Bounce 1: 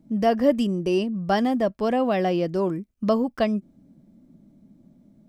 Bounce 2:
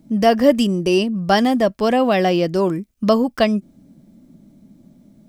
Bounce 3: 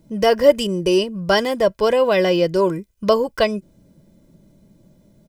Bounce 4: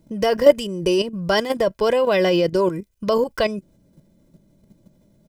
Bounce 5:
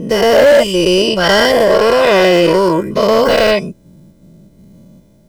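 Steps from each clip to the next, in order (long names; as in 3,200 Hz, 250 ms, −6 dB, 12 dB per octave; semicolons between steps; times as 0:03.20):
high-shelf EQ 2,200 Hz +7.5 dB; level +5.5 dB
comb filter 2 ms, depth 70%; level −1 dB
output level in coarse steps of 10 dB; level +3 dB
every bin's largest magnitude spread in time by 240 ms; gain into a clipping stage and back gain 8.5 dB; level +4 dB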